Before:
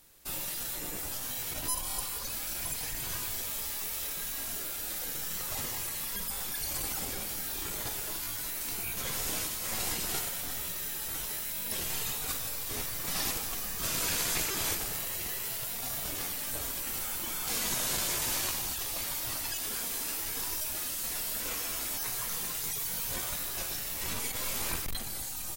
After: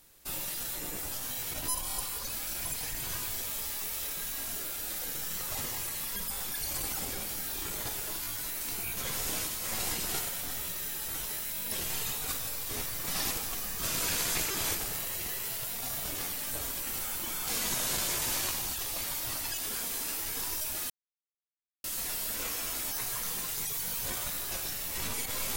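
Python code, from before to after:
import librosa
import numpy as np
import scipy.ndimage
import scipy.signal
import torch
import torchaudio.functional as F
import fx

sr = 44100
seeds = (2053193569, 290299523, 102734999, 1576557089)

y = fx.edit(x, sr, fx.insert_silence(at_s=20.9, length_s=0.94), tone=tone)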